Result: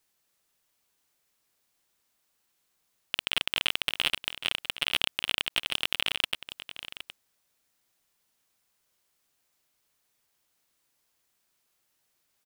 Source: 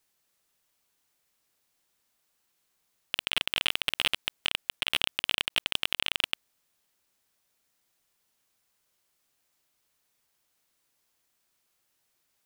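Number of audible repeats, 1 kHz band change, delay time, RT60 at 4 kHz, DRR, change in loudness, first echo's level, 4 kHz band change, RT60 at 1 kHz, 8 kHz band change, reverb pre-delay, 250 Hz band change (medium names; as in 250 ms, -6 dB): 1, 0.0 dB, 766 ms, no reverb, no reverb, 0.0 dB, -13.0 dB, 0.0 dB, no reverb, 0.0 dB, no reverb, 0.0 dB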